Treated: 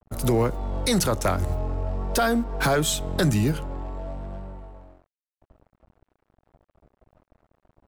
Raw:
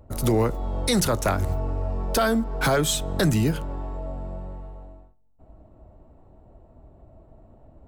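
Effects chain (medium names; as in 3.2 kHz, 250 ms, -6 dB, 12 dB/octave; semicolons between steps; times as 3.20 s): crossover distortion -46.5 dBFS; vibrato 0.52 Hz 62 cents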